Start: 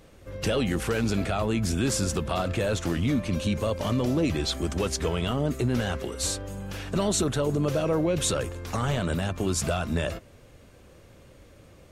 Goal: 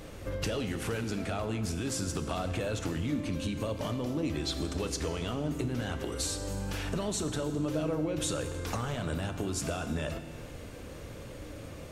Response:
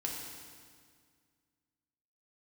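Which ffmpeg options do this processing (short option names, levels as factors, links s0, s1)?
-filter_complex "[0:a]acompressor=threshold=0.01:ratio=5,asplit=2[s0][s1];[1:a]atrim=start_sample=2205[s2];[s1][s2]afir=irnorm=-1:irlink=0,volume=0.596[s3];[s0][s3]amix=inputs=2:normalize=0,volume=1.58"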